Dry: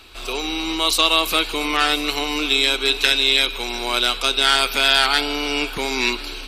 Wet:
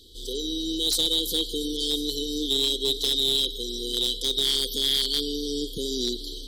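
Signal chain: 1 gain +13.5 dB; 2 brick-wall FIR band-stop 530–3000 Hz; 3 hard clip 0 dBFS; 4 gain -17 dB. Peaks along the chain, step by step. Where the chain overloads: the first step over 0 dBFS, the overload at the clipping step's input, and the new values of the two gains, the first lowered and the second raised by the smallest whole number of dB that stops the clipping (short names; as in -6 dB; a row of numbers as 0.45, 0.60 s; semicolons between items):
+11.5, +10.0, 0.0, -17.0 dBFS; step 1, 10.0 dB; step 1 +3.5 dB, step 4 -7 dB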